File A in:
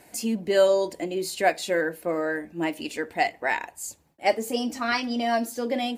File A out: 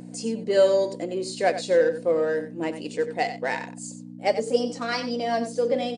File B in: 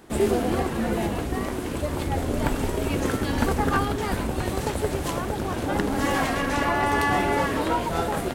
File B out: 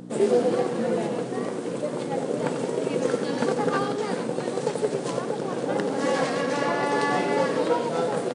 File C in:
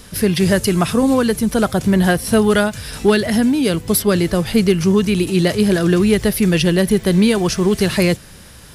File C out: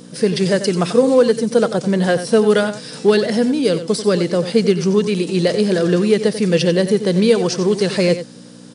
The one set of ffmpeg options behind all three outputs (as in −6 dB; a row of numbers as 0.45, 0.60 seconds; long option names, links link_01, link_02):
-filter_complex "[0:a]acrossover=split=2400[link_01][link_02];[link_01]adynamicsmooth=sensitivity=6:basefreq=1800[link_03];[link_03][link_02]amix=inputs=2:normalize=0,aeval=exprs='val(0)+0.0398*(sin(2*PI*60*n/s)+sin(2*PI*2*60*n/s)/2+sin(2*PI*3*60*n/s)/3+sin(2*PI*4*60*n/s)/4+sin(2*PI*5*60*n/s)/5)':channel_layout=same,equalizer=frequency=490:width=3.8:gain=12,asplit=2[link_04][link_05];[link_05]aecho=0:1:91:0.266[link_06];[link_04][link_06]amix=inputs=2:normalize=0,afftfilt=real='re*between(b*sr/4096,120,10000)':imag='im*between(b*sr/4096,120,10000)':win_size=4096:overlap=0.75,adynamicequalizer=threshold=0.00891:dfrequency=4700:dqfactor=1.9:tfrequency=4700:tqfactor=1.9:attack=5:release=100:ratio=0.375:range=2.5:mode=boostabove:tftype=bell,volume=-3.5dB"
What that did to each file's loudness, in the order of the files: +1.0, −0.5, −0.5 LU